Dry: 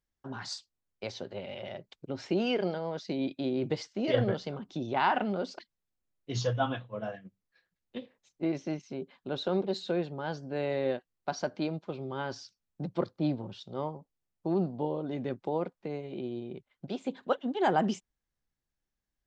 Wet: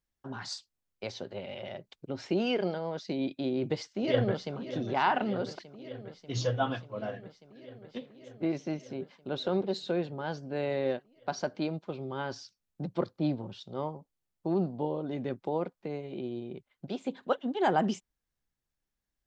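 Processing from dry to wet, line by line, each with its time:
3.42–4.57 echo throw 0.59 s, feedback 80%, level -13 dB

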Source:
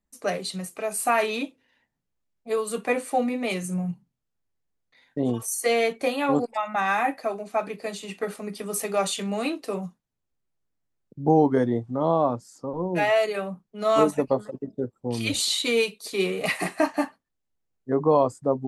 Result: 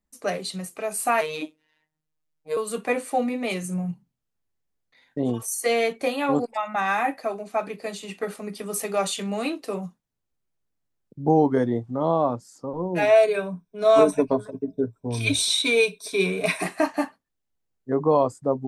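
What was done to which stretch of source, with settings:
1.21–2.57 robotiser 155 Hz
13.02–16.63 ripple EQ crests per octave 1.6, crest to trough 12 dB

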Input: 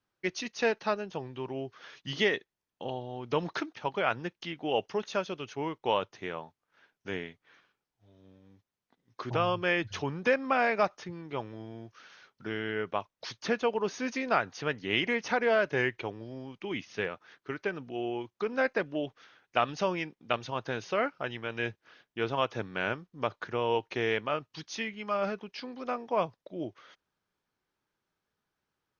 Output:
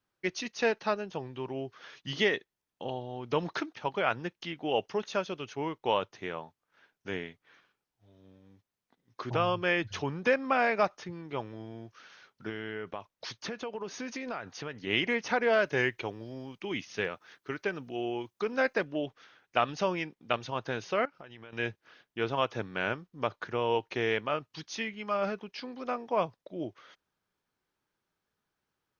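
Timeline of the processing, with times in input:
12.49–14.87 compressor, threshold -33 dBFS
15.53–18.85 high shelf 5700 Hz +9 dB
21.05–21.53 compressor 8:1, threshold -44 dBFS

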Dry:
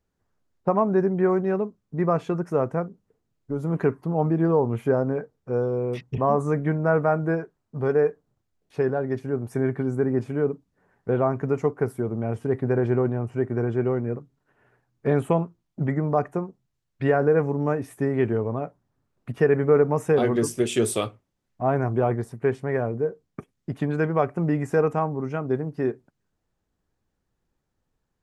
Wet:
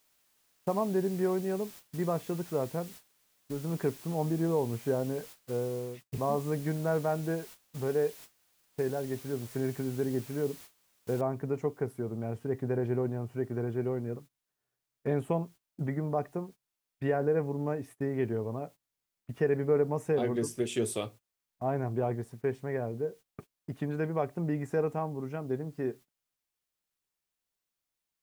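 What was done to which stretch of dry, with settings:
5.56–6.12 fade out equal-power
11.21 noise floor step -43 dB -60 dB
whole clip: gate -39 dBFS, range -20 dB; dynamic EQ 1300 Hz, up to -6 dB, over -42 dBFS, Q 2.7; gain -8 dB

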